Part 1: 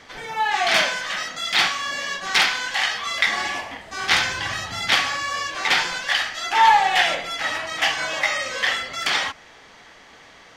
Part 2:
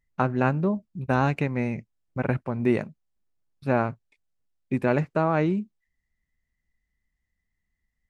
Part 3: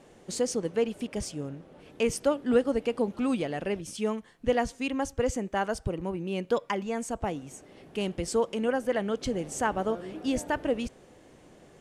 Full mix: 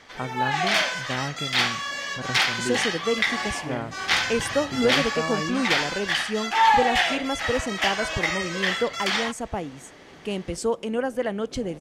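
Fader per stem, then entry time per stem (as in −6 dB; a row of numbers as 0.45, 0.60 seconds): −3.5, −8.0, +1.5 decibels; 0.00, 0.00, 2.30 seconds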